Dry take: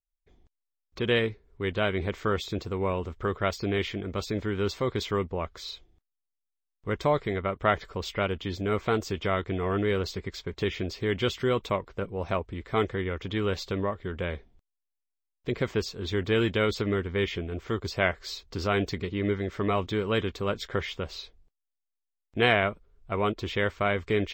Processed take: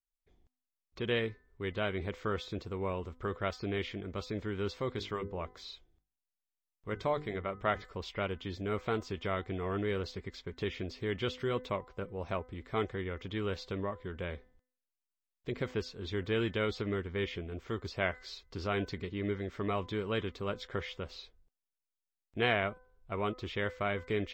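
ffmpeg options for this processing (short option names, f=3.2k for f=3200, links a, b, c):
-filter_complex "[0:a]asettb=1/sr,asplit=3[a][b][c];[a]atrim=end=4.934[d];[b]atrim=start=4.93:end=7.82,asetpts=PTS-STARTPTS,afade=t=in:d=0.004:c=qsin,afade=t=out:st=2.886:d=0.004:c=qsin,bandreject=f=50:t=h:w=6,bandreject=f=100:t=h:w=6,bandreject=f=150:t=h:w=6,bandreject=f=200:t=h:w=6,bandreject=f=250:t=h:w=6,bandreject=f=300:t=h:w=6,bandreject=f=350:t=h:w=6,bandreject=f=400:t=h:w=6,bandreject=f=450:t=h:w=6,bandreject=f=500:t=h:w=6[e];[c]atrim=start=7.816[f];[d][e]acrossfade=d=0.004:c1=hsin:c2=qsin[g];[g][f]acrossfade=d=0.004:c1=qsin:c2=hsin,bandreject=f=252.7:t=h:w=4,bandreject=f=505.4:t=h:w=4,bandreject=f=758.1:t=h:w=4,bandreject=f=1.0108k:t=h:w=4,bandreject=f=1.2635k:t=h:w=4,bandreject=f=1.5162k:t=h:w=4,bandreject=f=1.7689k:t=h:w=4,bandreject=f=2.0216k:t=h:w=4,acrossover=split=6000[h][i];[i]acompressor=threshold=-59dB:ratio=4:attack=1:release=60[j];[h][j]amix=inputs=2:normalize=0,volume=-7dB"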